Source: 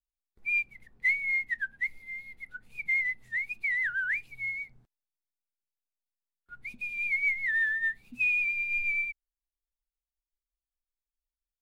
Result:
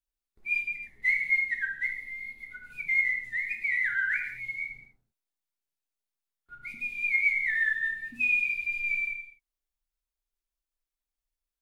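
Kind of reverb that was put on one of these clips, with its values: gated-style reverb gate 290 ms falling, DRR 1 dB; trim -1 dB

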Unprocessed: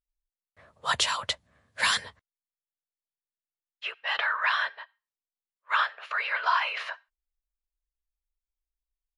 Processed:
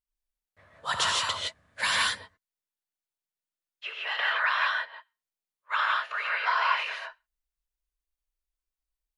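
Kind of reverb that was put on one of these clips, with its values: gated-style reverb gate 190 ms rising, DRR -2 dB; trim -3.5 dB

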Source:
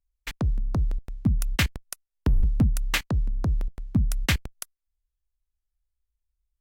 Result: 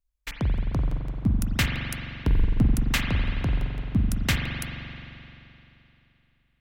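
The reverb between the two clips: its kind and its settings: spring tank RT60 3 s, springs 43 ms, chirp 45 ms, DRR 1 dB; trim -1 dB

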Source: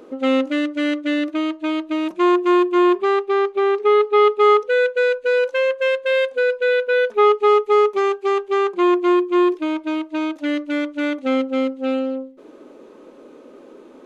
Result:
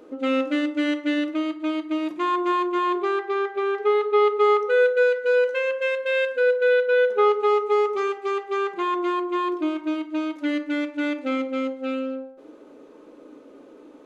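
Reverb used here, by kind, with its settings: FDN reverb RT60 0.78 s, low-frequency decay 1.45×, high-frequency decay 0.5×, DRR 5.5 dB; trim -5.5 dB

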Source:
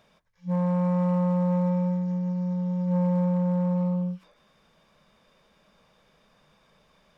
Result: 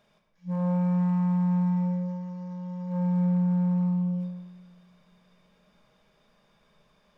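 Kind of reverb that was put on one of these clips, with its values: simulated room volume 1000 m³, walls mixed, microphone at 1.3 m; trim -5.5 dB

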